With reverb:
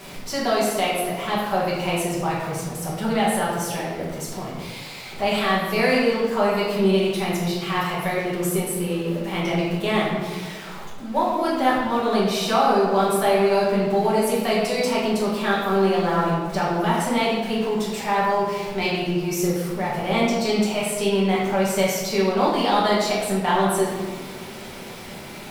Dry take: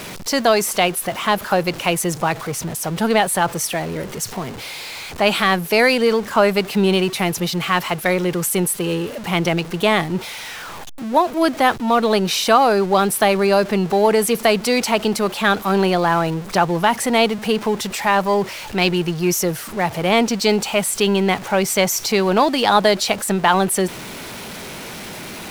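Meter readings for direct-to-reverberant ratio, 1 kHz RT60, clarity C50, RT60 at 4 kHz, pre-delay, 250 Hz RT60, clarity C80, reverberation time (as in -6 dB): -7.5 dB, 1.4 s, 0.0 dB, 0.90 s, 5 ms, 1.8 s, 2.5 dB, 1.7 s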